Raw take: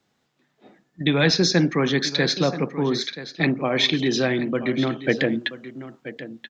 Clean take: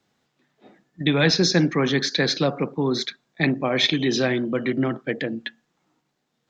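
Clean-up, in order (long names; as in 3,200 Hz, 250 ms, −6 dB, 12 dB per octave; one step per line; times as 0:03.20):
echo removal 981 ms −14 dB
level 0 dB, from 0:05.03 −5.5 dB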